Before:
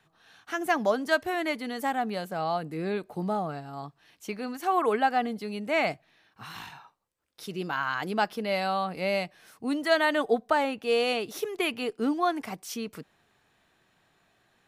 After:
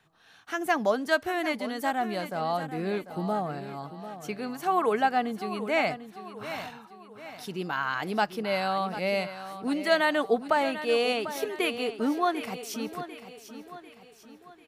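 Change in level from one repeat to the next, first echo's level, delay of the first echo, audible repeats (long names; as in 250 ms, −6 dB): −7.0 dB, −12.0 dB, 745 ms, 4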